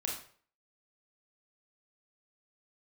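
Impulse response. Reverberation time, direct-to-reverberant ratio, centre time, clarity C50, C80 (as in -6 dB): 0.50 s, -1.5 dB, 35 ms, 4.5 dB, 9.5 dB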